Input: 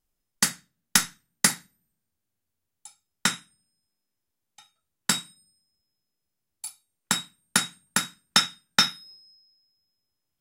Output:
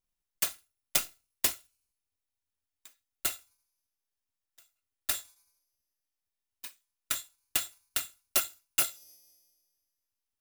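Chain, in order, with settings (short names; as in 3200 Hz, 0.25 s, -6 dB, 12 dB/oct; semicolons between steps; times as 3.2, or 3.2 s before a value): FFT order left unsorted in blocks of 256 samples; gain -7 dB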